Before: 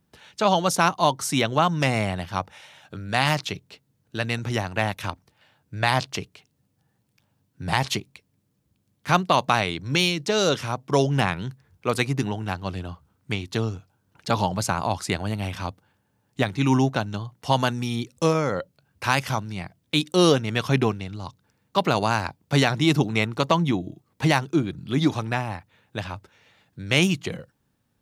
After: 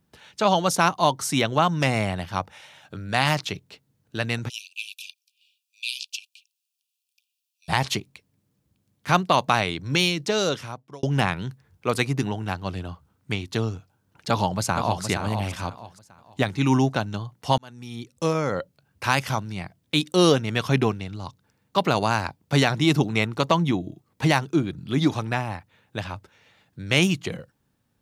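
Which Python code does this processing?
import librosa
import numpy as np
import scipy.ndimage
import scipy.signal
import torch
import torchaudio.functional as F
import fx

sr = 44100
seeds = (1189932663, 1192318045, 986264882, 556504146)

y = fx.cheby1_highpass(x, sr, hz=2400.0, order=10, at=(4.48, 7.68), fade=0.02)
y = fx.echo_throw(y, sr, start_s=14.28, length_s=0.76, ms=470, feedback_pct=30, wet_db=-7.0)
y = fx.edit(y, sr, fx.fade_out_span(start_s=10.26, length_s=0.77),
    fx.fade_in_span(start_s=17.58, length_s=0.97), tone=tone)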